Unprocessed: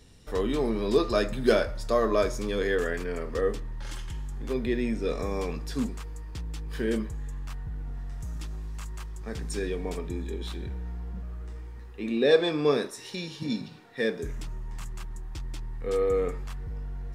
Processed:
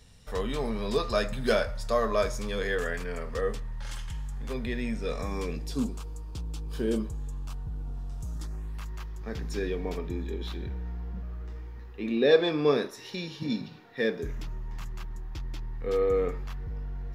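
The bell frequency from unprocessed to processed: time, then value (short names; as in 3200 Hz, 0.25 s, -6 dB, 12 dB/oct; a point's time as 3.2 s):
bell -14 dB 0.51 oct
5.19 s 330 Hz
5.76 s 1900 Hz
8.32 s 1900 Hz
8.85 s 8600 Hz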